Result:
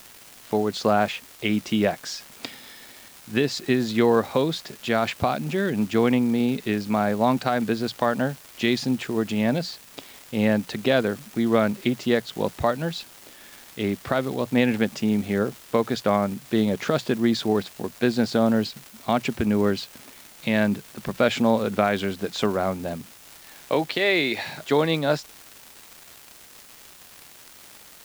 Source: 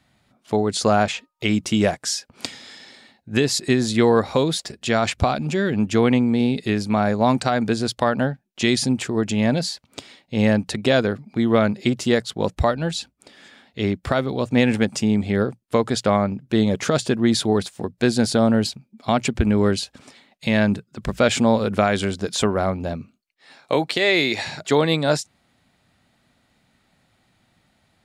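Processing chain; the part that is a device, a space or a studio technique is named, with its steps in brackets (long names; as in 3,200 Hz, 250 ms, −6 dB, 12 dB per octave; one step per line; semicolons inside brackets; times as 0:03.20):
78 rpm shellac record (band-pass filter 130–4,200 Hz; surface crackle 310 per second −30 dBFS; white noise bed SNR 25 dB)
level −2.5 dB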